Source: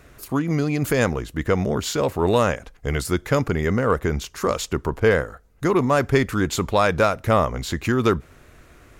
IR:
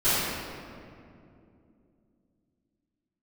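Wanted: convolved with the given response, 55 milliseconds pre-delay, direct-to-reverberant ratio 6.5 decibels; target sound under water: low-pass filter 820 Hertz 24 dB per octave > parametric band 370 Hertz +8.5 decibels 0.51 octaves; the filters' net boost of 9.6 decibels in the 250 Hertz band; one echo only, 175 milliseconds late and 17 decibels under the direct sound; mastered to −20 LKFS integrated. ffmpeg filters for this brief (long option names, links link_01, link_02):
-filter_complex "[0:a]equalizer=frequency=250:width_type=o:gain=8.5,aecho=1:1:175:0.141,asplit=2[link_01][link_02];[1:a]atrim=start_sample=2205,adelay=55[link_03];[link_02][link_03]afir=irnorm=-1:irlink=0,volume=-23dB[link_04];[link_01][link_04]amix=inputs=2:normalize=0,lowpass=frequency=820:width=0.5412,lowpass=frequency=820:width=1.3066,equalizer=frequency=370:width_type=o:width=0.51:gain=8.5,volume=-5.5dB"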